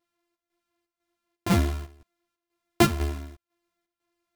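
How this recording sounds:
a buzz of ramps at a fixed pitch in blocks of 128 samples
chopped level 2 Hz, depth 65%, duty 70%
a shimmering, thickened sound

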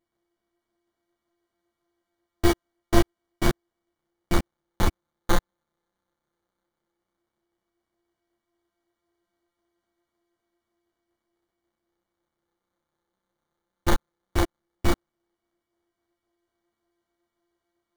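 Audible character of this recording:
a buzz of ramps at a fixed pitch in blocks of 128 samples
phaser sweep stages 2, 0.13 Hz, lowest notch 580–3,500 Hz
aliases and images of a low sample rate 2,600 Hz, jitter 0%
a shimmering, thickened sound

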